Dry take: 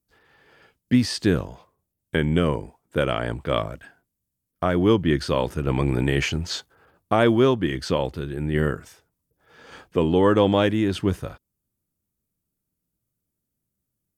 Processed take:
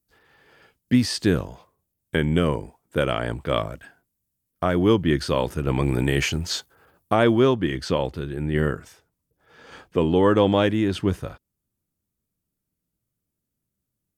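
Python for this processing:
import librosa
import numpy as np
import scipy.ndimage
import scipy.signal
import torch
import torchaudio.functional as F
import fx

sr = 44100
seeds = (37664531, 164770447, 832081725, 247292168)

y = fx.high_shelf(x, sr, hz=8300.0, db=fx.steps((0.0, 4.5), (5.82, 10.5), (7.13, -2.5)))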